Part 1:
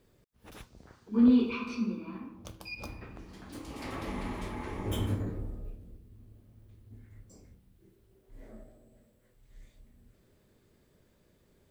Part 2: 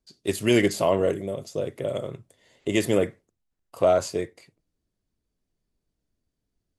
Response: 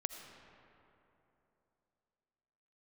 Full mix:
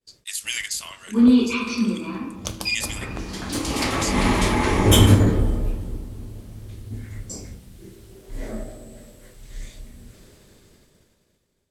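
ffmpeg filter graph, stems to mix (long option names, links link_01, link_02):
-filter_complex "[0:a]dynaudnorm=framelen=840:gausssize=5:maxgain=14dB,volume=2.5dB,asplit=2[link_01][link_02];[link_02]volume=-8dB[link_03];[1:a]highpass=frequency=1300:width=0.5412,highpass=frequency=1300:width=1.3066,highshelf=frequency=3900:gain=5.5,volume=-4.5dB,asplit=2[link_04][link_05];[link_05]apad=whole_len=516187[link_06];[link_01][link_06]sidechaincompress=threshold=-41dB:ratio=8:attack=16:release=145[link_07];[2:a]atrim=start_sample=2205[link_08];[link_03][link_08]afir=irnorm=-1:irlink=0[link_09];[link_07][link_04][link_09]amix=inputs=3:normalize=0,lowpass=7100,aemphasis=mode=production:type=75fm,agate=range=-33dB:threshold=-49dB:ratio=3:detection=peak"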